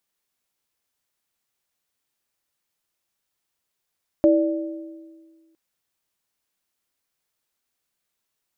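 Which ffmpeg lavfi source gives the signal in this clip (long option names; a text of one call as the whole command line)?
ffmpeg -f lavfi -i "aevalsrc='0.211*pow(10,-3*t/1.72)*sin(2*PI*325*t)+0.211*pow(10,-3*t/1.21)*sin(2*PI*588*t)':duration=1.31:sample_rate=44100" out.wav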